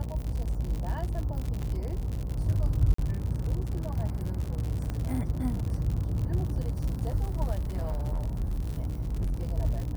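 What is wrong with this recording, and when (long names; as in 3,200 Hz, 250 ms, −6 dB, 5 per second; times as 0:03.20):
mains buzz 60 Hz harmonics 18 −34 dBFS
surface crackle 91 per second −32 dBFS
0:01.62–0:01.63: drop-out 6.9 ms
0:02.94–0:02.98: drop-out 44 ms
0:04.90: click −21 dBFS
0:07.61–0:09.48: clipping −26 dBFS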